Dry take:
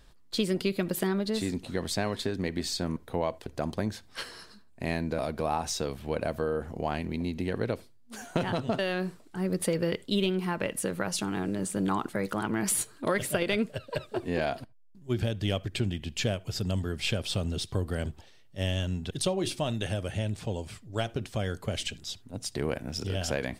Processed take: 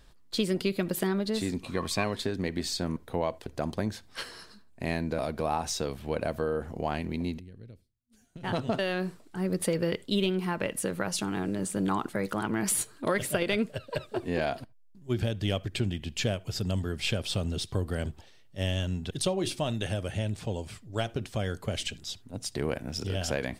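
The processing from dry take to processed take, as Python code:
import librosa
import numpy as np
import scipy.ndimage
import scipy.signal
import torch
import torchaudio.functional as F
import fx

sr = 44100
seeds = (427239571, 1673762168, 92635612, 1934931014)

y = fx.small_body(x, sr, hz=(1100.0, 2400.0), ring_ms=45, db=17, at=(1.59, 2.04))
y = fx.tone_stack(y, sr, knobs='10-0-1', at=(7.38, 8.43), fade=0.02)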